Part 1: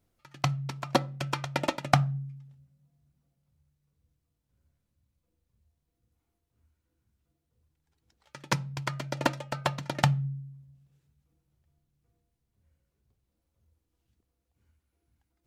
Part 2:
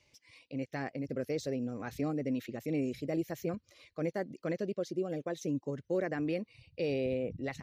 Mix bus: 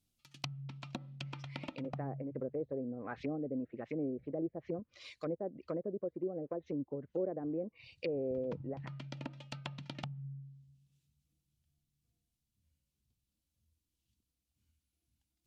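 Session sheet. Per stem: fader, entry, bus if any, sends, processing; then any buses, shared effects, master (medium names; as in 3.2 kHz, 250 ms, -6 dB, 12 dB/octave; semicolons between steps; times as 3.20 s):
-0.5 dB, 0.00 s, no send, high-order bell 860 Hz -14 dB 2.8 oct; compression 16:1, threshold -32 dBFS, peak gain reduction 13 dB
0.0 dB, 1.25 s, no send, low-pass that closes with the level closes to 700 Hz, closed at -32 dBFS; treble shelf 2 kHz +11 dB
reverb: none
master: low-pass that closes with the level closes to 820 Hz, closed at -32 dBFS; bass shelf 270 Hz -9 dB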